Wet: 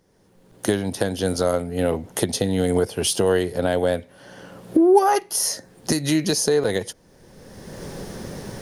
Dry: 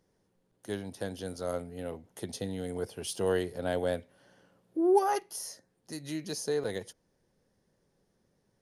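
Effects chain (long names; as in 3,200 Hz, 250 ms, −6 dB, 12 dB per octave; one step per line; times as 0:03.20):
camcorder AGC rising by 25 dB per second
level +9 dB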